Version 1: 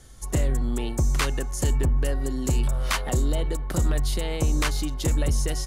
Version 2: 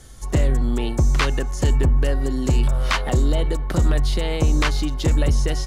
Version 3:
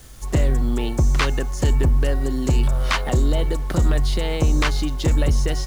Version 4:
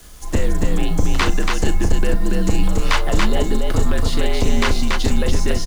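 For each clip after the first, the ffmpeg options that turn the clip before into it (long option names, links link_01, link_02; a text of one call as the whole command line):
ffmpeg -i in.wav -filter_complex "[0:a]acrossover=split=5800[link_01][link_02];[link_02]acompressor=threshold=-49dB:ratio=4:attack=1:release=60[link_03];[link_01][link_03]amix=inputs=2:normalize=0,volume=5dB" out.wav
ffmpeg -i in.wav -af "acrusher=bits=7:mix=0:aa=0.000001" out.wav
ffmpeg -i in.wav -filter_complex "[0:a]afreqshift=-67,asplit=2[link_01][link_02];[link_02]aecho=0:1:37.9|282.8:0.282|0.708[link_03];[link_01][link_03]amix=inputs=2:normalize=0,volume=2dB" out.wav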